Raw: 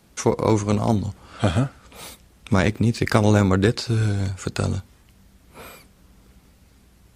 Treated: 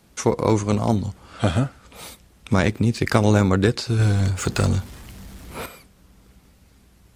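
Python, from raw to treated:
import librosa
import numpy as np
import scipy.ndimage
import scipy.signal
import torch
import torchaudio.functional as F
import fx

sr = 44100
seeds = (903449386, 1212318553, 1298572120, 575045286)

y = fx.power_curve(x, sr, exponent=0.7, at=(3.99, 5.66))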